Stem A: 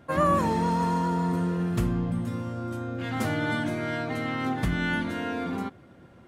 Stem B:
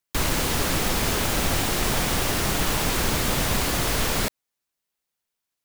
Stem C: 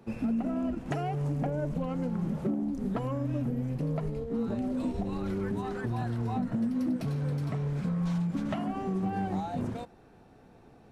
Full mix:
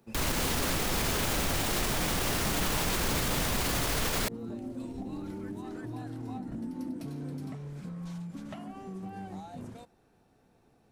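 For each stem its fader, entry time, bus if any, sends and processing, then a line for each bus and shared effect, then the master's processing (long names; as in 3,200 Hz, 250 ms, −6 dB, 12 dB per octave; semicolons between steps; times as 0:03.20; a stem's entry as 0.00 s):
0.0 dB, 1.85 s, no send, formant resonators in series u; downward compressor, threshold −38 dBFS, peak gain reduction 9 dB
0.0 dB, 0.00 s, no send, no processing
−10.0 dB, 0.00 s, no send, high-shelf EQ 4,700 Hz +11 dB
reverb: not used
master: brickwall limiter −20 dBFS, peak gain reduction 10 dB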